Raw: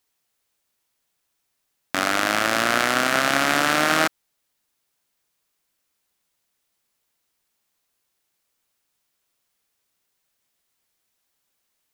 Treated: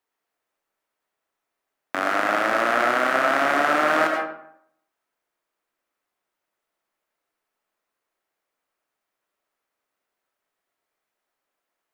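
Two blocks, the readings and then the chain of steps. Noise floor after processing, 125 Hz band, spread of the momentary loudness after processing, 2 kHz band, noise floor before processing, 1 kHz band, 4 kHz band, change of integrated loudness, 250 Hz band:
-83 dBFS, -9.5 dB, 8 LU, -1.0 dB, -75 dBFS, +1.5 dB, -9.0 dB, -0.5 dB, -2.0 dB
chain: three-band isolator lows -13 dB, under 270 Hz, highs -14 dB, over 2.1 kHz; algorithmic reverb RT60 0.7 s, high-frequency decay 0.6×, pre-delay 55 ms, DRR 2.5 dB

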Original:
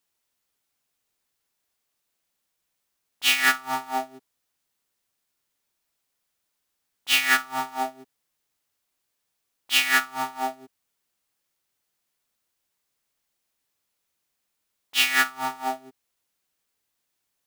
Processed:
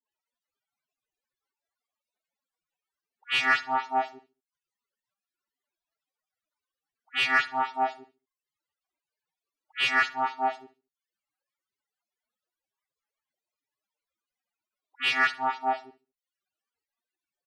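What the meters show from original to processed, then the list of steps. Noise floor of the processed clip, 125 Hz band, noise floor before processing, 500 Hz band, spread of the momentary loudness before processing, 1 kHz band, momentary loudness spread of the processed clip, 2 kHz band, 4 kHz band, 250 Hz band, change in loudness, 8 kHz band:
under -85 dBFS, no reading, -79 dBFS, +1.0 dB, 13 LU, +1.0 dB, 9 LU, -2.5 dB, -6.5 dB, -3.5 dB, -3.0 dB, -18.0 dB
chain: reverb removal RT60 0.52 s; loudest bins only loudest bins 64; phase dispersion highs, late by 117 ms, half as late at 2.3 kHz; overdrive pedal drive 12 dB, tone 1.3 kHz, clips at -8 dBFS; on a send: feedback delay 71 ms, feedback 33%, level -18 dB; on the sum: trim -1.5 dB

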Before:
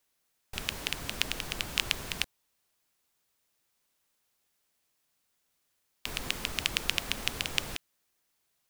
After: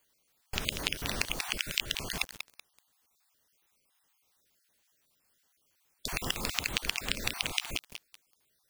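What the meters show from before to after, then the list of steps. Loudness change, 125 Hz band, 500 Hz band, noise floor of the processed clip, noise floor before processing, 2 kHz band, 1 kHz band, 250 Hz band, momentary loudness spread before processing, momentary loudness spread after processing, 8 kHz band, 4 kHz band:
0.0 dB, +1.0 dB, +1.0 dB, -74 dBFS, -77 dBFS, 0.0 dB, +1.0 dB, +1.5 dB, 8 LU, 9 LU, +1.0 dB, -1.0 dB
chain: random holes in the spectrogram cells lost 38%; compression 6:1, threshold -32 dBFS, peak gain reduction 11 dB; bit-crushed delay 190 ms, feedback 35%, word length 7-bit, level -7 dB; trim +5.5 dB

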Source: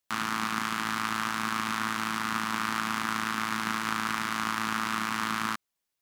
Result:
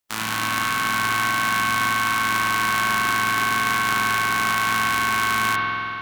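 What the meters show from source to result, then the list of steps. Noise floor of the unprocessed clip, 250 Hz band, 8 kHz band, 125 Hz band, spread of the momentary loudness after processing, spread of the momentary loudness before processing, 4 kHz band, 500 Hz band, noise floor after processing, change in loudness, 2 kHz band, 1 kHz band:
-84 dBFS, +1.5 dB, +9.5 dB, +9.5 dB, 2 LU, 1 LU, +9.0 dB, +9.5 dB, -28 dBFS, +9.5 dB, +11.5 dB, +9.5 dB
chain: spectral contrast reduction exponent 0.53; spring tank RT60 2.9 s, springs 46 ms, chirp 60 ms, DRR -5 dB; trim +2 dB

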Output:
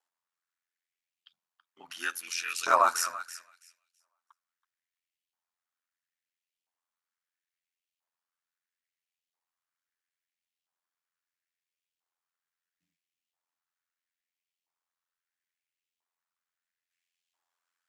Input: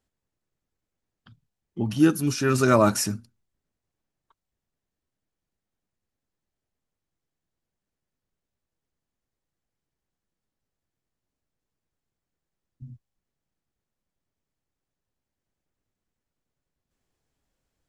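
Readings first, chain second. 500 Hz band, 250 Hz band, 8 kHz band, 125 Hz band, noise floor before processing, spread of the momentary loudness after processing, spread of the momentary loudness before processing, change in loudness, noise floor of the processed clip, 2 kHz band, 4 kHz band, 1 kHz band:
-12.0 dB, -30.5 dB, -3.5 dB, under -40 dB, under -85 dBFS, 21 LU, 12 LU, -6.0 dB, under -85 dBFS, -1.5 dB, -2.5 dB, +1.0 dB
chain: thinning echo 328 ms, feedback 18%, high-pass 320 Hz, level -13.5 dB; ring modulator 43 Hz; LFO high-pass saw up 0.75 Hz 870–3000 Hz; trim -1.5 dB

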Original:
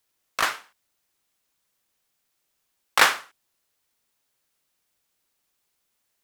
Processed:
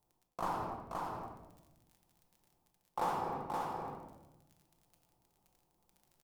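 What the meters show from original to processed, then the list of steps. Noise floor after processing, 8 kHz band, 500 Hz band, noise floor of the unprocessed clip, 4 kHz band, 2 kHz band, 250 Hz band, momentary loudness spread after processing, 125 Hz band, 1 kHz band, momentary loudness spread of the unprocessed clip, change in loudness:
-80 dBFS, -25.0 dB, -4.5 dB, -76 dBFS, -27.5 dB, -26.5 dB, +1.0 dB, 15 LU, no reading, -7.5 dB, 17 LU, -18.0 dB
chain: FFT filter 170 Hz 0 dB, 580 Hz -7 dB, 870 Hz -2 dB, 1.7 kHz -30 dB; crackle 24 per s -64 dBFS; simulated room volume 430 m³, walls mixed, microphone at 0.86 m; reverse; compression 4:1, threshold -46 dBFS, peak gain reduction 19 dB; reverse; treble shelf 5.9 kHz +9.5 dB; on a send: delay 524 ms -3.5 dB; on the sum: trim +10 dB

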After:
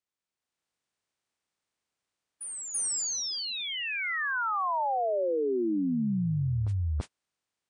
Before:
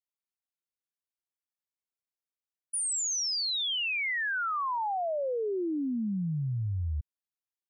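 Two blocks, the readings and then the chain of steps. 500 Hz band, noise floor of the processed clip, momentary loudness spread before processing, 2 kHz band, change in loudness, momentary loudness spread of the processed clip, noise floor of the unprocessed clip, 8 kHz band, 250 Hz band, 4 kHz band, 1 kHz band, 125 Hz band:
+3.0 dB, under -85 dBFS, 5 LU, -0.5 dB, +0.5 dB, 5 LU, under -85 dBFS, 0.0 dB, +3.0 dB, -3.5 dB, +2.0 dB, +3.0 dB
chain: spectral levelling over time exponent 0.4; gate -33 dBFS, range -43 dB; spectral gate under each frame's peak -30 dB strong; level rider gain up to 9 dB; on a send: reverse echo 334 ms -9.5 dB; on the sum: dynamic bell 3.6 kHz, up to -7 dB, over -34 dBFS, Q 0.74; trim -8 dB

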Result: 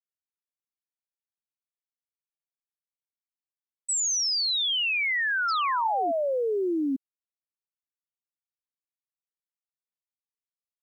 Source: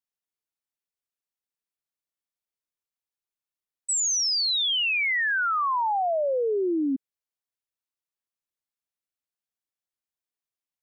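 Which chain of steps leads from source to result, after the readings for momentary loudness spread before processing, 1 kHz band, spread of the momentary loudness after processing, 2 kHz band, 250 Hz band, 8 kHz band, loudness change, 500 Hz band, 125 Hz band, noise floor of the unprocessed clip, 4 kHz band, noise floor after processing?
6 LU, -1.5 dB, 6 LU, -1.5 dB, -1.5 dB, -1.5 dB, -1.5 dB, -1.5 dB, no reading, under -85 dBFS, -1.5 dB, under -85 dBFS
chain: bit crusher 11-bit; painted sound fall, 5.48–6.12 s, 260–5500 Hz -33 dBFS; trim -1.5 dB

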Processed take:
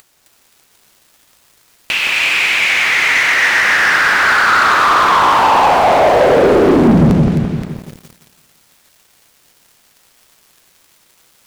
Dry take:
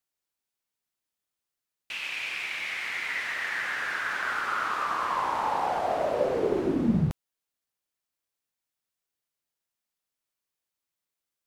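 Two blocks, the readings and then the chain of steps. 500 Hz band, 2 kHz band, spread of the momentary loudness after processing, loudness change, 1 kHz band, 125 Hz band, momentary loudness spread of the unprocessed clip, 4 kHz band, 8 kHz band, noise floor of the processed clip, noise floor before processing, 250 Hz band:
+17.0 dB, +19.5 dB, 6 LU, +18.0 dB, +18.0 dB, +17.5 dB, 5 LU, +20.5 dB, +21.0 dB, -54 dBFS, under -85 dBFS, +17.0 dB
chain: treble shelf 11 kHz -5.5 dB; upward compressor, threshold -35 dBFS; two-band feedback delay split 1.6 kHz, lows 170 ms, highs 262 ms, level -3.5 dB; waveshaping leveller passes 3; trim +8 dB

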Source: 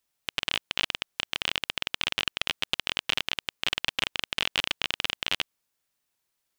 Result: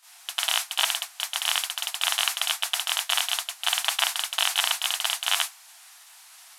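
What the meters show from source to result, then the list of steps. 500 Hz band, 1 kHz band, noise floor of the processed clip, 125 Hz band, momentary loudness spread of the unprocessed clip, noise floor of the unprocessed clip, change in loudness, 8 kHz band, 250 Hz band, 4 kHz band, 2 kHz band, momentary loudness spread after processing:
-0.5 dB, +6.5 dB, -51 dBFS, under -40 dB, 3 LU, -80 dBFS, +4.5 dB, +15.0 dB, under -40 dB, +4.0 dB, +1.0 dB, 4 LU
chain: one-bit delta coder 64 kbps, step -27.5 dBFS; gate -32 dBFS, range -34 dB; brick-wall FIR high-pass 640 Hz; trim +7 dB

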